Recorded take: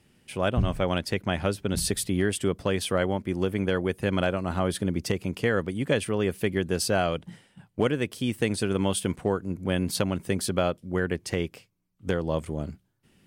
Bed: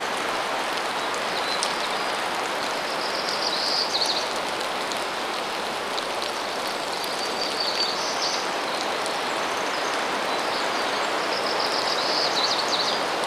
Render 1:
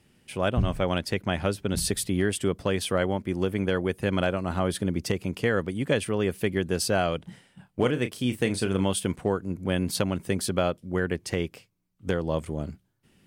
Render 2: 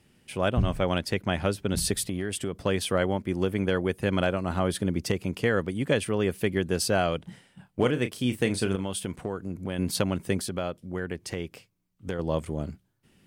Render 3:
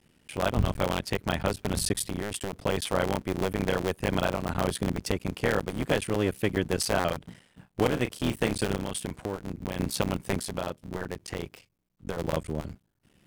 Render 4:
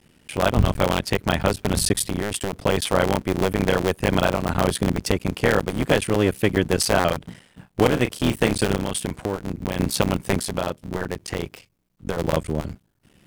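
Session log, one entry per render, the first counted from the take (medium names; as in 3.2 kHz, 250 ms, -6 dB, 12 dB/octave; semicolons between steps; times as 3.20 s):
7.22–8.85 s: doubling 32 ms -10 dB
2.09–2.61 s: compression 4:1, threshold -26 dBFS; 8.75–9.79 s: compression 3:1, threshold -28 dBFS; 10.41–12.19 s: compression 1.5:1, threshold -36 dBFS
cycle switcher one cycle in 3, muted
trim +7 dB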